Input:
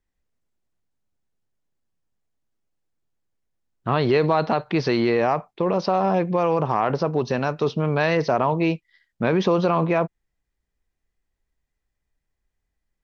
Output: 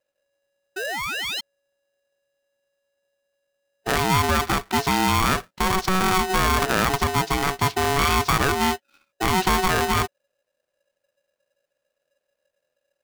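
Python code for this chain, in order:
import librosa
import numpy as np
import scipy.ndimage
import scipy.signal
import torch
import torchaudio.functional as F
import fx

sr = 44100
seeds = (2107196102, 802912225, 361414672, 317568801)

y = fx.rider(x, sr, range_db=10, speed_s=2.0)
y = fx.spec_paint(y, sr, seeds[0], shape='rise', start_s=0.76, length_s=0.65, low_hz=910.0, high_hz=3800.0, level_db=-28.0)
y = y * np.sign(np.sin(2.0 * np.pi * 560.0 * np.arange(len(y)) / sr))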